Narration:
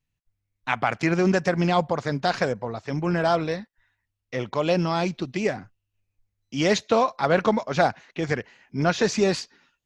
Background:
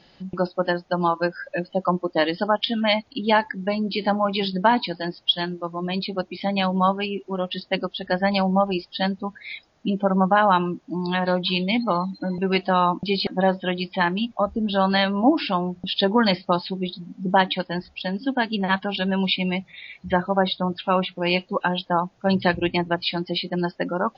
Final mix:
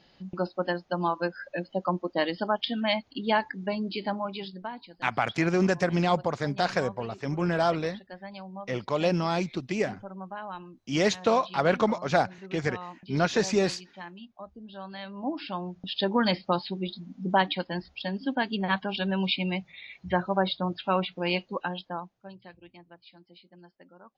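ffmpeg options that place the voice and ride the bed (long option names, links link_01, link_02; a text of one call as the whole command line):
ffmpeg -i stem1.wav -i stem2.wav -filter_complex "[0:a]adelay=4350,volume=-3dB[link_01];[1:a]volume=10dB,afade=type=out:start_time=3.79:duration=0.93:silence=0.177828,afade=type=in:start_time=14.97:duration=1.35:silence=0.158489,afade=type=out:start_time=21.19:duration=1.15:silence=0.0668344[link_02];[link_01][link_02]amix=inputs=2:normalize=0" out.wav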